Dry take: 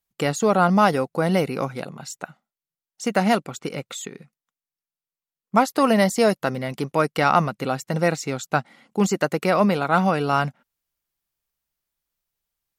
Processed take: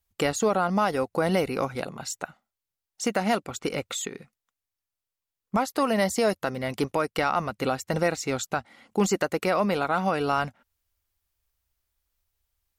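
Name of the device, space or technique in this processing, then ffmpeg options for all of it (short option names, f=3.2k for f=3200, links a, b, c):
car stereo with a boomy subwoofer: -af "lowshelf=f=110:t=q:w=3:g=8.5,alimiter=limit=-15.5dB:level=0:latency=1:release=338,volume=2dB"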